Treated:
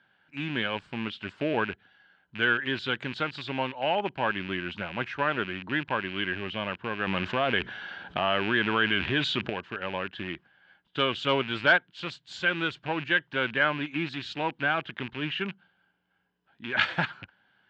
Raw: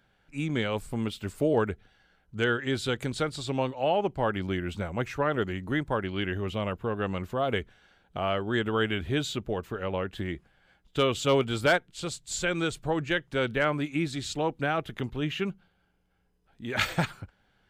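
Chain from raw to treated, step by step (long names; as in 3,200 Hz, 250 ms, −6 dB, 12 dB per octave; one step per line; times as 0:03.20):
loose part that buzzes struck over −37 dBFS, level −28 dBFS
loudspeaker in its box 150–4,500 Hz, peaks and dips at 460 Hz −5 dB, 950 Hz +5 dB, 1,600 Hz +9 dB, 3,000 Hz +6 dB
0:07.07–0:09.50: envelope flattener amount 50%
level −2 dB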